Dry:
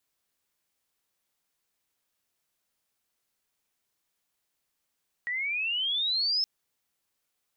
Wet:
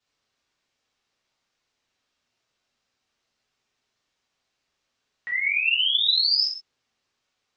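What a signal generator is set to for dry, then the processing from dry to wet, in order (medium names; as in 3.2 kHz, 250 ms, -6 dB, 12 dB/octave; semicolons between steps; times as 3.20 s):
sweep logarithmic 1.9 kHz -> 5.3 kHz -28.5 dBFS -> -23.5 dBFS 1.17 s
low-pass 5.9 kHz 24 dB/octave; gated-style reverb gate 180 ms falling, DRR -6 dB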